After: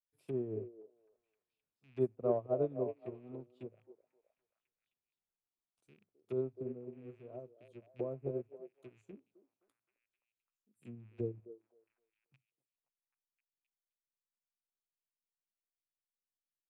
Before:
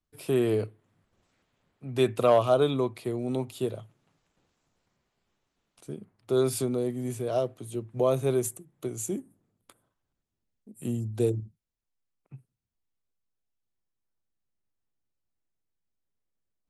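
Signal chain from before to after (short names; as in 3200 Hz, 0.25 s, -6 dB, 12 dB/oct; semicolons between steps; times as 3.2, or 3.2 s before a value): rattling part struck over -41 dBFS, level -30 dBFS; treble ducked by the level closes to 530 Hz, closed at -25 dBFS; on a send: delay with a stepping band-pass 0.261 s, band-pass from 450 Hz, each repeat 0.7 oct, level -4 dB; on the sum: upward expander 2.5:1, over -35 dBFS; gain -6 dB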